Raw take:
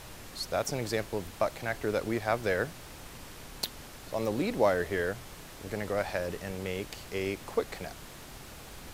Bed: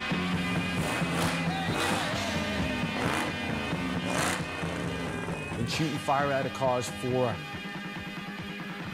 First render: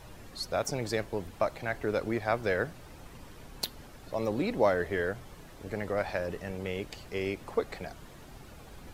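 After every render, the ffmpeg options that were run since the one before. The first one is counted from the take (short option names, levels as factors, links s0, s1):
-af "afftdn=nr=9:nf=-48"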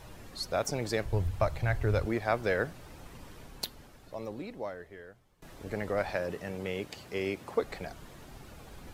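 -filter_complex "[0:a]asettb=1/sr,asplit=3[s0][s1][s2];[s0]atrim=end=1.054[s3];[s1]atrim=start=1.05:end=2.06,asetpts=PTS-STARTPTS,afade=t=in:d=0.004:c=qsin,afade=t=out:st=1.006:d=0.004:c=qsin,lowshelf=f=150:t=q:w=1.5:g=13[s4];[s2]atrim=start=2.056[s5];[s3][s4]acrossfade=d=0.004:c1=hsin:c2=qsin[s6];[s6][s5]acrossfade=d=0.004:c1=qsin:c2=hsin,asettb=1/sr,asplit=3[s7][s8][s9];[s7]atrim=end=6.154[s10];[s8]atrim=start=6.15:end=7.62,asetpts=PTS-STARTPTS,afade=t=in:d=0.004:c=qsin,afade=t=out:st=1.466:d=0.004:c=qsin,highpass=95[s11];[s9]atrim=start=7.616[s12];[s10][s11]acrossfade=d=0.004:c1=hsin:c2=qsin[s13];[s13][s12]acrossfade=d=0.004:c1=qsin:c2=hsin,asplit=2[s14][s15];[s14]atrim=end=5.42,asetpts=PTS-STARTPTS,afade=t=out:st=3.35:d=2.07:c=qua:silence=0.0944061[s16];[s15]atrim=start=5.42,asetpts=PTS-STARTPTS,afade=t=in:d=0.004:c=hsin:silence=0.0944061[s17];[s16][s17]concat=n=2:v=0:a=1"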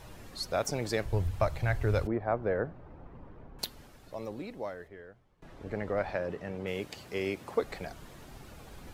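-filter_complex "[0:a]asettb=1/sr,asplit=3[s0][s1][s2];[s0]atrim=end=2.074[s3];[s1]atrim=start=2.07:end=3.59,asetpts=PTS-STARTPTS,afade=t=in:d=0.004:c=qsin,afade=t=out:st=1.516:d=0.004:c=qsin,lowpass=1100[s4];[s2]atrim=start=3.586[s5];[s3][s4]acrossfade=d=0.004:c1=hsin:c2=qsin[s6];[s6][s5]acrossfade=d=0.004:c1=qsin:c2=hsin,asplit=3[s7][s8][s9];[s7]afade=t=out:st=4.87:d=0.02[s10];[s8]aemphasis=mode=reproduction:type=75kf,afade=t=in:st=4.87:d=0.02,afade=t=out:st=6.66:d=0.02[s11];[s9]afade=t=in:st=6.66:d=0.02[s12];[s10][s11][s12]amix=inputs=3:normalize=0"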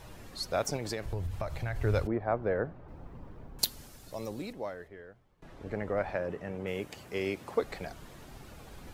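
-filter_complex "[0:a]asettb=1/sr,asplit=3[s0][s1][s2];[s0]atrim=end=0.764[s3];[s1]atrim=start=0.76:end=1.76,asetpts=PTS-STARTPTS,afade=t=in:d=0.004:c=qsin,afade=t=out:st=0.996:d=0.004:c=qsin,acompressor=threshold=0.0316:ratio=6:attack=3.2:release=140:knee=1:detection=peak[s4];[s2]atrim=start=1.756[s5];[s3][s4]acrossfade=d=0.004:c1=hsin:c2=qsin[s6];[s6][s5]acrossfade=d=0.004:c1=qsin:c2=hsin,asettb=1/sr,asplit=3[s7][s8][s9];[s7]atrim=end=2.884[s10];[s8]atrim=start=2.88:end=4.53,asetpts=PTS-STARTPTS,afade=t=in:d=0.004:c=qsin,afade=t=out:st=1.646:d=0.004:c=qsin,bass=f=250:g=3,treble=f=4000:g=11[s11];[s9]atrim=start=4.526[s12];[s10][s11]acrossfade=d=0.004:c1=hsin:c2=qsin[s13];[s13][s12]acrossfade=d=0.004:c1=qsin:c2=hsin,asettb=1/sr,asplit=3[s14][s15][s16];[s14]atrim=end=5.754[s17];[s15]atrim=start=5.75:end=7.14,asetpts=PTS-STARTPTS,afade=t=in:d=0.004:c=qsin,afade=t=out:st=1.386:d=0.004:c=qsin,equalizer=f=4300:t=o:w=0.81:g=-5.5[s18];[s16]atrim=start=7.136[s19];[s17][s18]acrossfade=d=0.004:c1=hsin:c2=qsin[s20];[s20][s19]acrossfade=d=0.004:c1=qsin:c2=hsin"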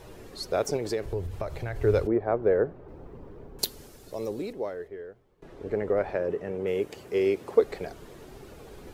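-af "equalizer=f=410:t=o:w=0.73:g=11.5"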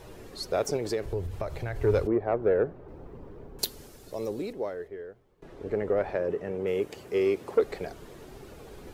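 -af "asoftclip=type=tanh:threshold=0.211"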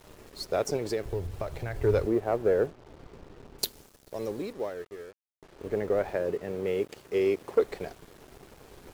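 -af "aeval=exprs='sgn(val(0))*max(abs(val(0))-0.00355,0)':c=same,acrusher=bits=8:mix=0:aa=0.5"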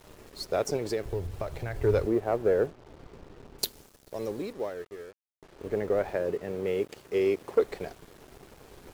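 -af anull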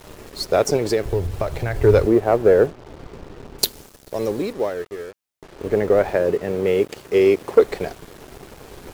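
-af "volume=3.35"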